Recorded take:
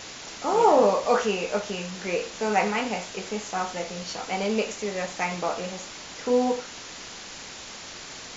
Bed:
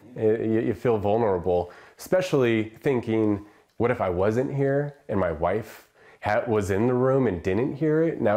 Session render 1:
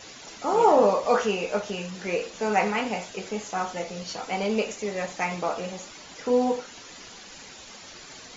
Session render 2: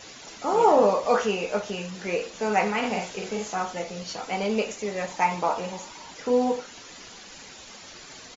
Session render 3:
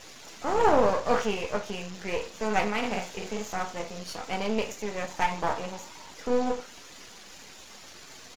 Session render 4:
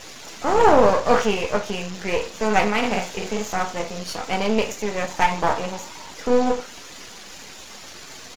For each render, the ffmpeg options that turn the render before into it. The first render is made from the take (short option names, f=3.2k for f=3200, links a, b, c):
-af "afftdn=nr=9:nf=-41"
-filter_complex "[0:a]asplit=3[a][b][c];[a]afade=t=out:st=2.82:d=0.02[d];[b]asplit=2[e][f];[f]adelay=49,volume=-3dB[g];[e][g]amix=inputs=2:normalize=0,afade=t=in:st=2.82:d=0.02,afade=t=out:st=3.54:d=0.02[h];[c]afade=t=in:st=3.54:d=0.02[i];[d][h][i]amix=inputs=3:normalize=0,asettb=1/sr,asplit=3[j][k][l];[j]atrim=end=5.114[m];[k]atrim=start=5.11:end=6.11,asetpts=PTS-STARTPTS,afade=t=in:d=0.004:c=qsin,afade=t=out:st=0.996:d=0.004:c=qsin,equalizer=f=930:t=o:w=0.25:g=13[n];[l]atrim=start=6.106[o];[m][n]acrossfade=d=0.004:c1=hsin:c2=qsin[p];[p][o]acrossfade=d=0.004:c1=qsin:c2=hsin"
-af "aeval=exprs='if(lt(val(0),0),0.251*val(0),val(0))':c=same"
-af "volume=7.5dB,alimiter=limit=-2dB:level=0:latency=1"